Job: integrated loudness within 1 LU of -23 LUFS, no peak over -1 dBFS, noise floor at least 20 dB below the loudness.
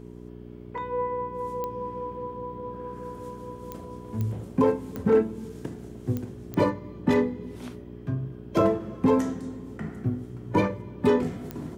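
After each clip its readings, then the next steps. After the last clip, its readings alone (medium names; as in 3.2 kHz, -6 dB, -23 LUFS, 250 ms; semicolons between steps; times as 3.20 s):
clicks found 7; hum 60 Hz; highest harmonic 420 Hz; hum level -40 dBFS; loudness -28.5 LUFS; peak level -10.0 dBFS; loudness target -23.0 LUFS
-> de-click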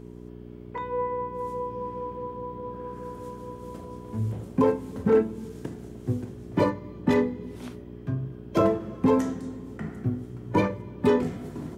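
clicks found 0; hum 60 Hz; highest harmonic 420 Hz; hum level -40 dBFS
-> de-hum 60 Hz, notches 7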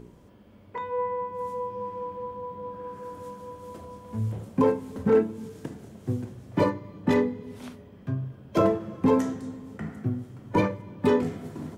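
hum not found; loudness -28.5 LUFS; peak level -10.5 dBFS; loudness target -23.0 LUFS
-> trim +5.5 dB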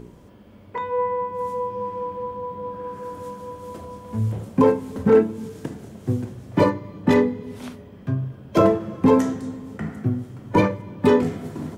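loudness -23.0 LUFS; peak level -5.0 dBFS; noise floor -46 dBFS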